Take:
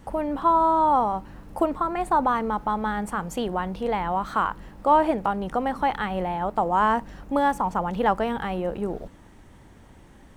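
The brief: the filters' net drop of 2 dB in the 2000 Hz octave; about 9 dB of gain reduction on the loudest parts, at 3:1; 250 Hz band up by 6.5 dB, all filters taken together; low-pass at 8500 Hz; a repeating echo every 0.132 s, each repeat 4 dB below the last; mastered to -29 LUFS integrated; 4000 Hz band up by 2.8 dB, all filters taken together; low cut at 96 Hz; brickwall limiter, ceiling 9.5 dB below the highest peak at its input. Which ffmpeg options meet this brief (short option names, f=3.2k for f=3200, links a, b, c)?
-af "highpass=96,lowpass=8.5k,equalizer=f=250:t=o:g=8.5,equalizer=f=2k:t=o:g=-4,equalizer=f=4k:t=o:g=6,acompressor=threshold=-26dB:ratio=3,alimiter=limit=-23dB:level=0:latency=1,aecho=1:1:132|264|396|528|660|792|924|1056|1188:0.631|0.398|0.25|0.158|0.0994|0.0626|0.0394|0.0249|0.0157,volume=1dB"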